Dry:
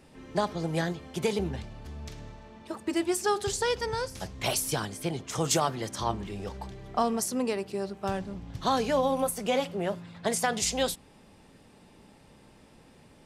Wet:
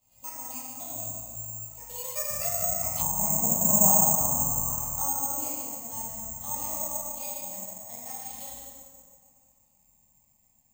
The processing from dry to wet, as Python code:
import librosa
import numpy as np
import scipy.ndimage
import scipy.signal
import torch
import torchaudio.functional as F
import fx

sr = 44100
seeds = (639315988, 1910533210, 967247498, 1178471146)

y = fx.speed_glide(x, sr, from_pct=149, to_pct=98)
y = fx.doppler_pass(y, sr, speed_mps=17, closest_m=4.9, pass_at_s=3.58)
y = fx.brickwall_lowpass(y, sr, high_hz=5800.0)
y = fx.low_shelf(y, sr, hz=97.0, db=5.0)
y = fx.fixed_phaser(y, sr, hz=1500.0, stages=6)
y = y + 10.0 ** (-7.5 / 20.0) * np.pad(y, (int(145 * sr / 1000.0), 0))[:len(y)]
y = fx.rev_plate(y, sr, seeds[0], rt60_s=2.2, hf_ratio=0.5, predelay_ms=0, drr_db=-9.0)
y = fx.env_lowpass_down(y, sr, base_hz=780.0, full_db=-28.0)
y = (np.kron(y[::6], np.eye(6)[0]) * 6)[:len(y)]
y = y * librosa.db_to_amplitude(-1.5)